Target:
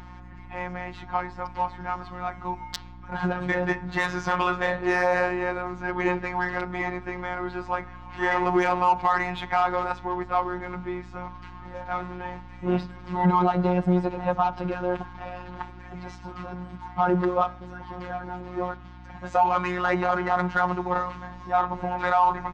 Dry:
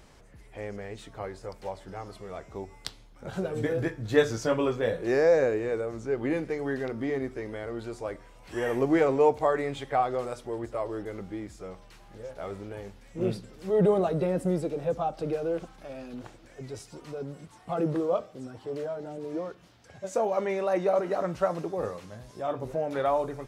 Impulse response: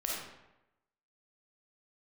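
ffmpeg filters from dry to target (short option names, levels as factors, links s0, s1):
-af "lowpass=f=7200:w=0.5412,lowpass=f=7200:w=1.3066,lowshelf=f=680:t=q:w=3:g=-7.5,adynamicsmooth=sensitivity=2:basefreq=2200,afftfilt=real='hypot(re,im)*cos(PI*b)':imag='0':win_size=1024:overlap=0.75,aeval=exprs='val(0)+0.00112*(sin(2*PI*60*n/s)+sin(2*PI*2*60*n/s)/2+sin(2*PI*3*60*n/s)/3+sin(2*PI*4*60*n/s)/4+sin(2*PI*5*60*n/s)/5)':c=same,asetrate=45938,aresample=44100,alimiter=level_in=15.8:limit=0.891:release=50:level=0:latency=1,volume=0.376"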